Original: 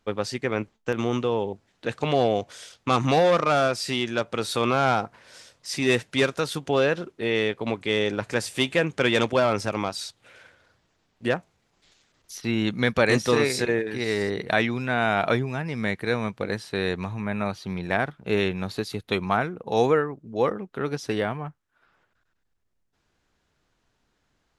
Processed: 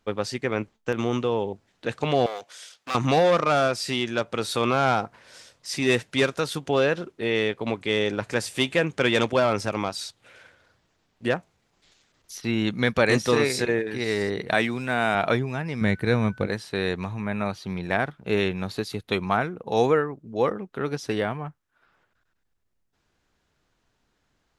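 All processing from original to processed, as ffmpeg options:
-filter_complex "[0:a]asettb=1/sr,asplit=3[a][b][c];[a]atrim=end=2.264[d];[b]atrim=start=2.26:end=2.95,asetpts=PTS-STARTPTS,afade=t=in:d=0.004:c=qsin,afade=t=out:st=0.686:d=0.004:c=qsin,aeval=exprs='clip(val(0),-1,0.0447)':c=same,highpass=f=1.1k:p=1[e];[c]atrim=start=2.946[f];[d][e]acrossfade=d=0.004:c1=hsin:c2=qsin[g];[g][f]acrossfade=d=0.004:c1=qsin:c2=hsin,asettb=1/sr,asplit=3[h][i][j];[h]atrim=end=14.544[k];[i]atrim=start=14.54:end=15.15,asetpts=PTS-STARTPTS,afade=t=in:d=0.004:c=qsin,afade=t=out:st=0.606:d=0.004:c=qsin,highpass=120,aeval=exprs='sgn(val(0))*max(abs(val(0))-0.00316,0)':c=same,equalizer=f=8.5k:w=4.4:g=12[l];[j]atrim=start=15.146[m];[k][l]acrossfade=d=0.004:c1=hsin:c2=qsin[n];[n][m]acrossfade=d=0.004:c1=qsin:c2=hsin,asettb=1/sr,asplit=3[o][p][q];[o]atrim=end=15.814[r];[p]atrim=start=15.81:end=16.47,asetpts=PTS-STARTPTS,afade=t=in:d=0.004:c=qsin,afade=t=out:st=0.656:d=0.004:c=qsin,lowshelf=f=220:g=11,aeval=exprs='val(0)+0.00447*sin(2*PI*1500*n/s)':c=same[s];[q]atrim=start=16.466[t];[r][s]acrossfade=d=0.004:c1=hsin:c2=qsin[u];[u][t]acrossfade=d=0.004:c1=qsin:c2=hsin"

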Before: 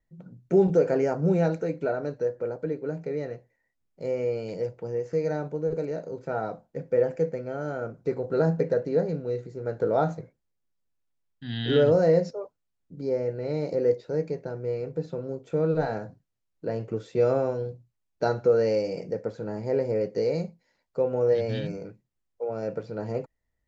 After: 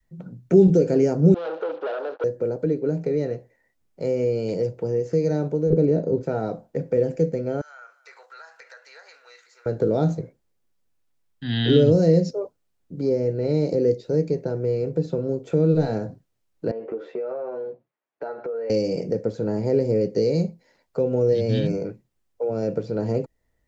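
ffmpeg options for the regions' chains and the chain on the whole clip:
-filter_complex "[0:a]asettb=1/sr,asplit=3[a][b][c];[a]atrim=end=1.344[d];[b]atrim=start=1.34:end=2.24,asetpts=PTS-STARTPTS,afade=t=in:d=0.004:c=qsin,afade=t=out:st=0.896:d=0.004:c=qsin,acrusher=bits=7:mix=0:aa=0.5,aeval=exprs='(tanh(50.1*val(0)+0.5)-tanh(0.5))/50.1':c=same,highpass=f=380:w=0.5412,highpass=f=380:w=1.3066,equalizer=f=520:t=q:w=4:g=5,equalizer=f=820:t=q:w=4:g=5,equalizer=f=1.4k:t=q:w=4:g=8,equalizer=f=2.1k:t=q:w=4:g=-8,lowpass=f=3.7k:w=0.5412,lowpass=f=3.7k:w=1.3066[e];[c]atrim=start=2.236[f];[d][e]acrossfade=d=0.004:c1=hsin:c2=qsin[g];[g][f]acrossfade=d=0.004:c1=qsin:c2=hsin,asettb=1/sr,asplit=3[h][i][j];[h]atrim=end=5.704[k];[i]atrim=start=5.7:end=6.23,asetpts=PTS-STARTPTS,afade=t=in:d=0.004:c=qsin,afade=t=out:st=0.526:d=0.004:c=qsin,lowpass=f=1.1k:p=1,acontrast=82[l];[j]atrim=start=6.226[m];[k][l]acrossfade=d=0.004:c1=hsin:c2=qsin[n];[n][m]acrossfade=d=0.004:c1=qsin:c2=hsin,asettb=1/sr,asplit=3[o][p][q];[o]atrim=end=7.614[r];[p]atrim=start=7.61:end=9.66,asetpts=PTS-STARTPTS,afade=t=in:d=0.004:c=qsin,afade=t=out:st=2.046:d=0.004:c=qsin,highpass=f=1.2k:w=0.5412,highpass=f=1.2k:w=1.3066,acompressor=threshold=-52dB:ratio=3:attack=3.2:release=140:knee=1:detection=peak,aecho=1:1:258:0.112,atrim=end_sample=90405[s];[q]atrim=start=9.656[t];[r][s]acrossfade=d=0.004:c1=hsin:c2=qsin[u];[u][t]acrossfade=d=0.004:c1=qsin:c2=hsin,asettb=1/sr,asplit=3[v][w][x];[v]atrim=end=16.714[y];[w]atrim=start=16.71:end=18.7,asetpts=PTS-STARTPTS,afade=t=in:d=0.004:c=qsin,afade=t=out:st=1.986:d=0.004:c=qsin,asuperpass=centerf=880:order=4:qfactor=0.51,asplit=2[z][aa];[aa]adelay=13,volume=-6.5dB[ab];[z][ab]amix=inputs=2:normalize=0,atrim=end_sample=87759,acompressor=threshold=-37dB:ratio=5:attack=3.2:release=140:knee=1:detection=peak[ac];[x]atrim=start=18.696[ad];[y][ac]acrossfade=d=0.004:c1=hsin:c2=qsin[ae];[ae][ad]acrossfade=d=0.004:c1=qsin:c2=hsin,adynamicequalizer=threshold=0.0158:dfrequency=430:dqfactor=0.8:tfrequency=430:tqfactor=0.8:attack=5:release=100:ratio=0.375:range=4:mode=boostabove:tftype=bell,acrossover=split=290|3000[af][ag][ah];[ag]acompressor=threshold=-34dB:ratio=6[ai];[af][ai][ah]amix=inputs=3:normalize=0,volume=7.5dB"

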